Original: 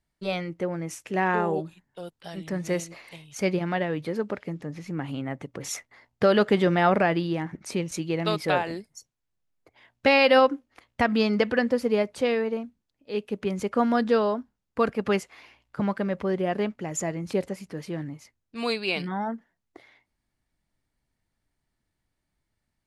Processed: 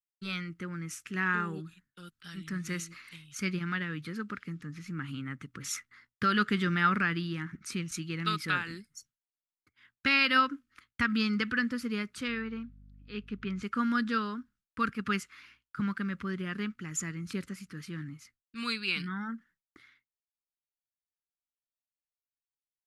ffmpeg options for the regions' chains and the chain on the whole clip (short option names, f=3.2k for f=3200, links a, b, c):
-filter_complex "[0:a]asettb=1/sr,asplit=3[a][b][c];[a]atrim=end=12.284[d];[b]atrim=start=12.28:end=13.63,asetpts=PTS-STARTPTS,afade=t=in:d=0.004:c=qsin,afade=t=out:st=1.346:d=0.004:c=qsin,lowpass=4k,aeval=exprs='val(0)+0.00398*(sin(2*PI*50*n/s)+sin(2*PI*2*50*n/s)/2+sin(2*PI*3*50*n/s)/3+sin(2*PI*4*50*n/s)/4+sin(2*PI*5*50*n/s)/5)':c=same[e];[c]atrim=start=13.626[f];[d][e]acrossfade=d=0.004:c1=hsin:c2=qsin[g];[g][f]acrossfade=d=0.004:c1=qsin:c2=hsin,agate=range=-33dB:threshold=-53dB:ratio=3:detection=peak,firequalizer=gain_entry='entry(230,0);entry(650,-26);entry(1300,8);entry(1900,2)':delay=0.05:min_phase=1,volume=-4.5dB"